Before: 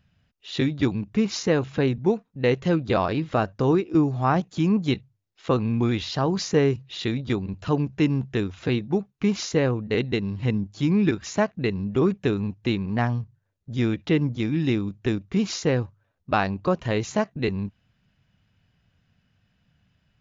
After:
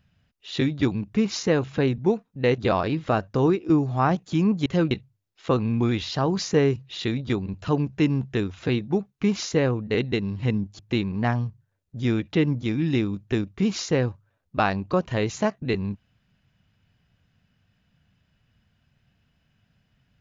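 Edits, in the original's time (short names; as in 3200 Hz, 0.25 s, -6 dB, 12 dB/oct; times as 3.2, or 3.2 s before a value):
2.58–2.83 move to 4.91
10.79–12.53 cut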